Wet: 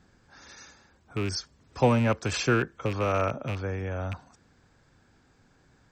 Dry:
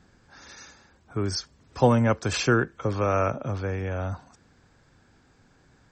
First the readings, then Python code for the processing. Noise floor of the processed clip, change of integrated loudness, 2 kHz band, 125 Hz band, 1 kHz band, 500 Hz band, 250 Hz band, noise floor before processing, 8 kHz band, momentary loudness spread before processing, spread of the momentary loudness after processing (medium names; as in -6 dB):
-63 dBFS, -2.5 dB, -1.5 dB, -2.5 dB, -2.5 dB, -2.5 dB, -2.5 dB, -61 dBFS, -2.5 dB, 17 LU, 14 LU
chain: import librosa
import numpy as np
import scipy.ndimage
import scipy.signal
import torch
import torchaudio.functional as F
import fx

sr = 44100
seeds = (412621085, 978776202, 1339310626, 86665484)

y = fx.rattle_buzz(x, sr, strikes_db=-26.0, level_db=-23.0)
y = y * librosa.db_to_amplitude(-2.5)